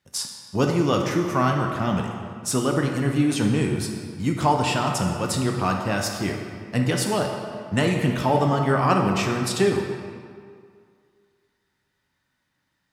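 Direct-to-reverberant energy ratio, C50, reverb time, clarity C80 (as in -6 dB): 1.5 dB, 3.5 dB, 2.1 s, 5.0 dB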